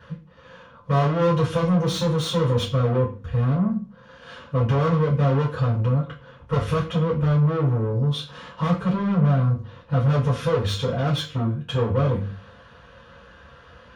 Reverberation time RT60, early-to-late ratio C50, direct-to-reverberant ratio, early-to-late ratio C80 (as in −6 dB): 0.40 s, 9.5 dB, −7.5 dB, 14.5 dB